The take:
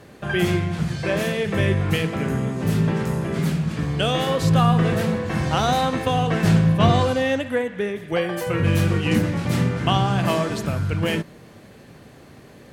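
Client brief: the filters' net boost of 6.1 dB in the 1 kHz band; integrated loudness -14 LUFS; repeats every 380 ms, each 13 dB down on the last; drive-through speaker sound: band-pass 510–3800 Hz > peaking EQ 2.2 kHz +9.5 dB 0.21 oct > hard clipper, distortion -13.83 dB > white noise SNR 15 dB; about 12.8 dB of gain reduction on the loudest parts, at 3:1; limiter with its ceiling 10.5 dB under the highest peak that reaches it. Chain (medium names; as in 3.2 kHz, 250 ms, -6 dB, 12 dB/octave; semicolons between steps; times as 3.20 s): peaking EQ 1 kHz +9 dB; compression 3:1, threshold -27 dBFS; peak limiter -22.5 dBFS; band-pass 510–3800 Hz; peaking EQ 2.2 kHz +9.5 dB 0.21 oct; feedback delay 380 ms, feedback 22%, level -13 dB; hard clipper -30 dBFS; white noise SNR 15 dB; trim +21.5 dB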